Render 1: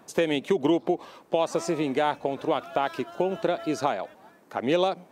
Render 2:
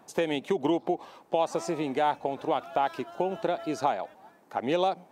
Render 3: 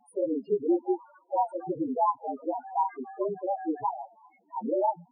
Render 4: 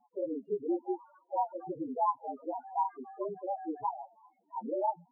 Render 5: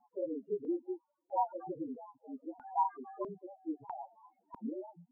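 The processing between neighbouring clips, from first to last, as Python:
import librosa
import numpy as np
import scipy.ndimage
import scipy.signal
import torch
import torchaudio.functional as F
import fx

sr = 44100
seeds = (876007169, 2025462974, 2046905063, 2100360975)

y1 = fx.peak_eq(x, sr, hz=810.0, db=6.5, octaves=0.43)
y1 = F.gain(torch.from_numpy(y1), -4.0).numpy()
y2 = fx.partial_stretch(y1, sr, pct=112)
y2 = fx.spec_topn(y2, sr, count=4)
y2 = F.gain(torch.from_numpy(y2), 4.0).numpy()
y3 = fx.ladder_lowpass(y2, sr, hz=1500.0, resonance_pct=35)
y4 = fx.filter_lfo_lowpass(y3, sr, shape='square', hz=0.77, low_hz=260.0, high_hz=1500.0, q=2.0)
y4 = F.gain(torch.from_numpy(y4), -3.0).numpy()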